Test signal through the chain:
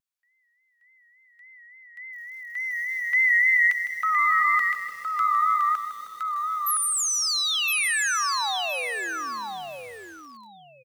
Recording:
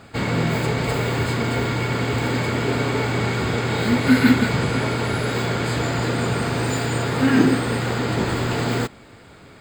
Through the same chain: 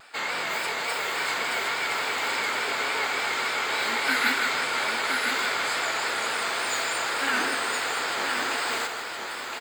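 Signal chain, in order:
high-pass filter 930 Hz 12 dB per octave
pitch vibrato 3.5 Hz 82 cents
on a send: repeating echo 1,015 ms, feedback 19%, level −5 dB
on the sum: feedback echo at a low word length 157 ms, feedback 55%, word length 7 bits, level −10 dB

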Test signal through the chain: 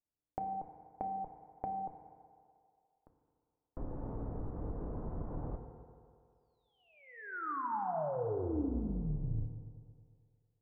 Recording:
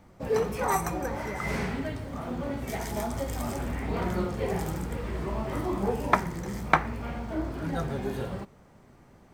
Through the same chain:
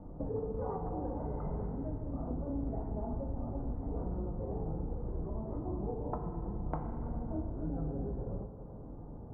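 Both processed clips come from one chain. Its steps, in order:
sub-octave generator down 2 octaves, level 0 dB
Bessel low-pass filter 620 Hz, order 6
downward compressor 5 to 1, threshold −44 dBFS
feedback delay network reverb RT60 2.3 s, low-frequency decay 0.75×, high-frequency decay 0.7×, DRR 3.5 dB
level +6.5 dB

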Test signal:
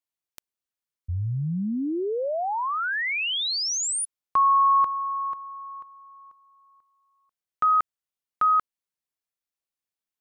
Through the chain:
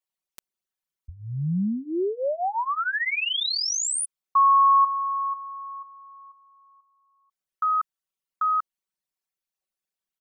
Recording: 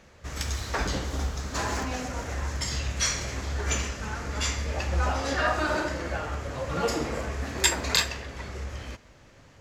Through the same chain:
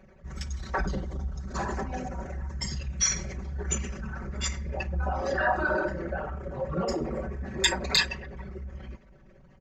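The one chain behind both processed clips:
spectral envelope exaggerated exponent 2
comb filter 5.3 ms, depth 88%
level −2 dB

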